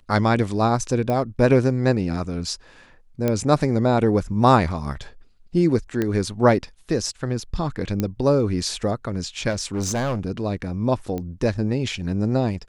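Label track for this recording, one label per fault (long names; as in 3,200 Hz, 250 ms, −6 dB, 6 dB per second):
1.100000	1.100000	click −14 dBFS
3.280000	3.280000	click −9 dBFS
6.020000	6.020000	click −11 dBFS
8.000000	8.000000	click −10 dBFS
9.500000	10.200000	clipping −20.5 dBFS
11.180000	11.180000	click −17 dBFS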